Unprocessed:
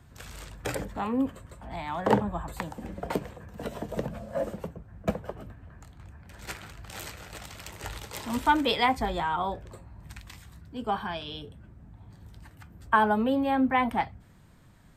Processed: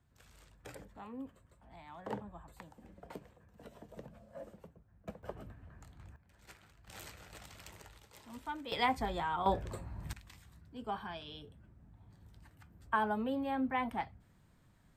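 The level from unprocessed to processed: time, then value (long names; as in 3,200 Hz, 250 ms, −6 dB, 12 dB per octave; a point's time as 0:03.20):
−18 dB
from 0:05.23 −6.5 dB
from 0:06.16 −18 dB
from 0:06.87 −10 dB
from 0:07.82 −19 dB
from 0:08.72 −7 dB
from 0:09.46 +2.5 dB
from 0:10.13 −10 dB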